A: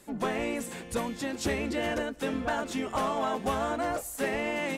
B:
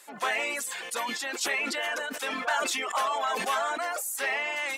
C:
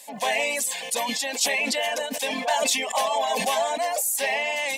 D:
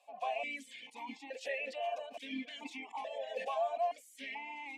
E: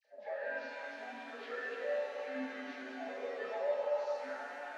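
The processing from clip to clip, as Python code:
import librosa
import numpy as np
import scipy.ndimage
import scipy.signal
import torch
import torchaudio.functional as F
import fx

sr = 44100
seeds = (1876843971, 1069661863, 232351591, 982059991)

y1 = fx.dereverb_blind(x, sr, rt60_s=1.1)
y1 = scipy.signal.sosfilt(scipy.signal.butter(2, 950.0, 'highpass', fs=sr, output='sos'), y1)
y1 = fx.sustainer(y1, sr, db_per_s=20.0)
y1 = y1 * 10.0 ** (6.0 / 20.0)
y2 = fx.fixed_phaser(y1, sr, hz=360.0, stages=6)
y2 = y2 * 10.0 ** (8.5 / 20.0)
y3 = fx.vowel_held(y2, sr, hz=2.3)
y3 = y3 * 10.0 ** (-4.5 / 20.0)
y4 = fx.partial_stretch(y3, sr, pct=83)
y4 = fx.dispersion(y4, sr, late='lows', ms=48.0, hz=1900.0)
y4 = fx.rev_shimmer(y4, sr, seeds[0], rt60_s=3.1, semitones=7, shimmer_db=-8, drr_db=-1.5)
y4 = y4 * 10.0 ** (-3.5 / 20.0)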